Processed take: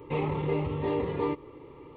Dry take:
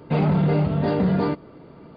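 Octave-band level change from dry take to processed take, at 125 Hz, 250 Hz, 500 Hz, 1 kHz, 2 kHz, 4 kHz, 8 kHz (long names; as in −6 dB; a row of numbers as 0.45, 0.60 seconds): −12.0 dB, −11.5 dB, −4.5 dB, −6.0 dB, −6.0 dB, −7.0 dB, can't be measured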